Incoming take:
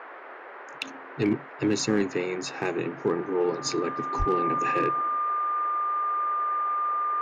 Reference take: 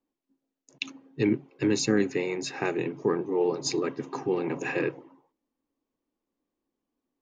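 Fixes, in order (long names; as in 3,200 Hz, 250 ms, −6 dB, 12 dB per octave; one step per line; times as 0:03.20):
clipped peaks rebuilt −16 dBFS
notch filter 1,200 Hz, Q 30
high-pass at the plosives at 0:04.18
noise reduction from a noise print 30 dB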